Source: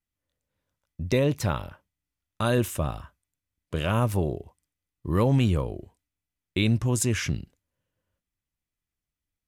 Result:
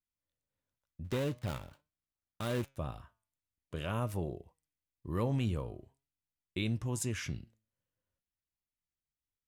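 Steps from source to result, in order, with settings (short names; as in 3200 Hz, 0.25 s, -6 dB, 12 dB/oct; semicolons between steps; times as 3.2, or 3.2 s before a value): 1.04–2.77 switching dead time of 0.22 ms; flange 0.46 Hz, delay 5.5 ms, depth 3.7 ms, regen +86%; gain -6 dB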